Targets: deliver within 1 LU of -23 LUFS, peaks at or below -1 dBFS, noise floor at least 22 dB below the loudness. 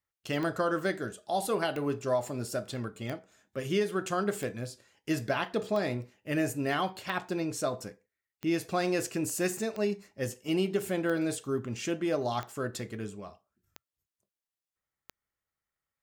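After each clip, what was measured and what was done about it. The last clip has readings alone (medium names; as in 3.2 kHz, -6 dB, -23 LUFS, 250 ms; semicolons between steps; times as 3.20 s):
clicks found 12; loudness -32.5 LUFS; peak level -15.5 dBFS; loudness target -23.0 LUFS
-> de-click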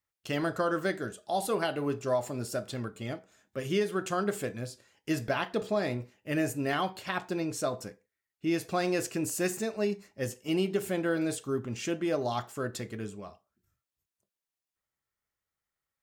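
clicks found 0; loudness -32.0 LUFS; peak level -15.5 dBFS; loudness target -23.0 LUFS
-> trim +9 dB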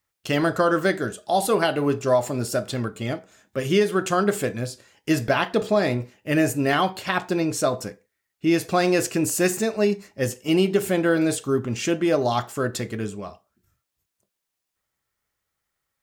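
loudness -23.0 LUFS; peak level -6.5 dBFS; noise floor -82 dBFS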